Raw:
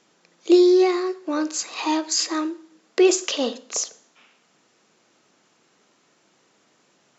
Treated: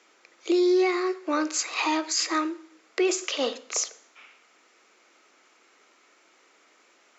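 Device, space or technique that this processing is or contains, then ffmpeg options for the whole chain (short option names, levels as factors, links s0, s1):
laptop speaker: -af "highpass=f=290:w=0.5412,highpass=f=290:w=1.3066,equalizer=f=1300:t=o:w=0.36:g=5.5,equalizer=f=2200:t=o:w=0.46:g=8,alimiter=limit=0.168:level=0:latency=1:release=225"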